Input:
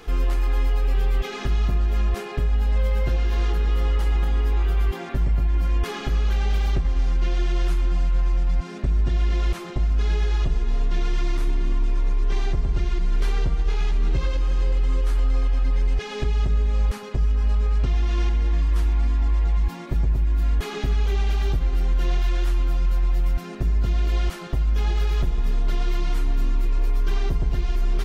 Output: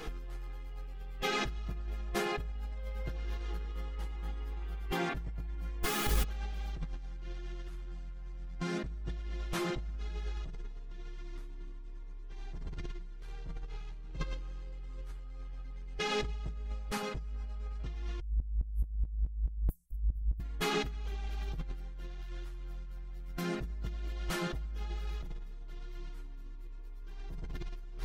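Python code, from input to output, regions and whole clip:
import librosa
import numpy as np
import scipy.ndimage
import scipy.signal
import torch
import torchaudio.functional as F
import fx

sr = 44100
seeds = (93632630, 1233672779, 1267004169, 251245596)

y = fx.chain(x, sr, fx.quant_dither(seeds[0], bits=6, dither='triangular'),
    fx.ensemble(), at=(5.83, 6.24))
y = fx.chain(y, sr, fx.cheby2_bandstop(low_hz=260.0, high_hz=3200.0, order=4, stop_db=70),
    fx.low_shelf(hz=380.0, db=4.0),
    fx.tremolo_shape(shape='saw_down', hz=4.7, depth_pct=75), at=(18.2, 20.4))
y = y + 0.4 * np.pad(y, (int(6.3 * sr / 1000.0), 0))[:len(y)]
y = fx.over_compress(y, sr, threshold_db=-26.0, ratio=-0.5)
y = F.gain(torch.from_numpy(y), -8.5).numpy()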